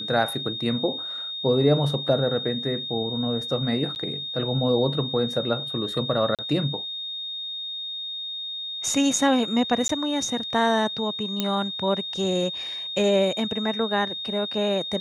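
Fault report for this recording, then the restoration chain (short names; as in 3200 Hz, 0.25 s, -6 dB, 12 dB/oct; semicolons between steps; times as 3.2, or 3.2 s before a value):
tone 3700 Hz -30 dBFS
3.95–3.96 gap 9.5 ms
6.35–6.39 gap 37 ms
9.88–9.89 gap 13 ms
11.4 pop -9 dBFS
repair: de-click; notch 3700 Hz, Q 30; interpolate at 3.95, 9.5 ms; interpolate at 6.35, 37 ms; interpolate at 9.88, 13 ms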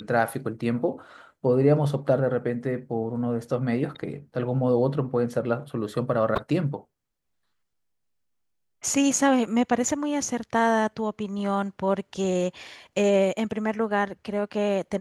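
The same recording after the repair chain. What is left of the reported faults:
none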